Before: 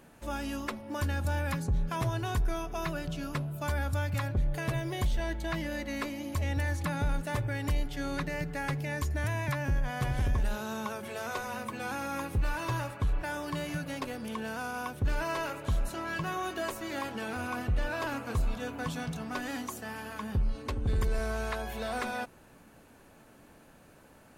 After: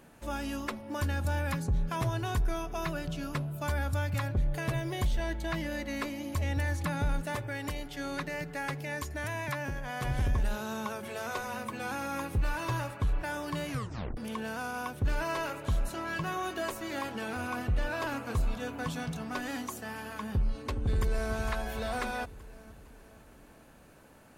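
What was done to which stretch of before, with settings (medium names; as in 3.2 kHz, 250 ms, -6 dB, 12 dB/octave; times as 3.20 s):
7.33–10.05 s: bass shelf 140 Hz -12 dB
13.70 s: tape stop 0.47 s
20.79–21.33 s: echo throw 460 ms, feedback 50%, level -8.5 dB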